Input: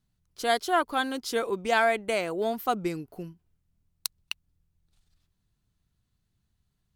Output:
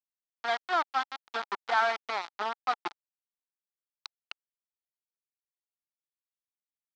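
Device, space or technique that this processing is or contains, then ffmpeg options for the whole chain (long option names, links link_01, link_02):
hand-held game console: -af "acrusher=bits=3:mix=0:aa=0.000001,highpass=460,equalizer=frequency=510:width_type=q:width=4:gain=-9,equalizer=frequency=840:width_type=q:width=4:gain=8,equalizer=frequency=1300:width_type=q:width=4:gain=7,equalizer=frequency=2700:width_type=q:width=4:gain=-5,lowpass=frequency=4400:width=0.5412,lowpass=frequency=4400:width=1.3066,volume=-6dB"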